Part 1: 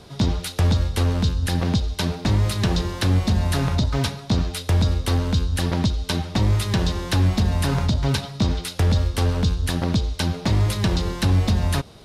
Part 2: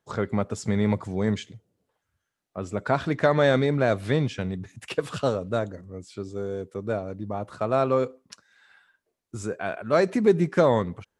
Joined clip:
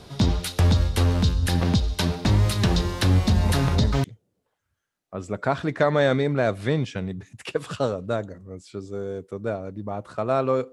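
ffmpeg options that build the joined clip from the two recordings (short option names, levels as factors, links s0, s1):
-filter_complex "[1:a]asplit=2[s0][s1];[0:a]apad=whole_dur=10.72,atrim=end=10.72,atrim=end=4.042[s2];[s1]atrim=start=1.468:end=8.15[s3];[s0]atrim=start=0.86:end=1.47,asetpts=PTS-STARTPTS,volume=0.473,afade=t=in:d=0.004:c=hsin,afade=t=out:st=0.606:d=0.004:c=hsin,adelay=3430[s4];[s2][s3]acrossfade=d=0.004:c1=hsin:c2=hsin[s5];[s5][s4]amix=inputs=2:normalize=0"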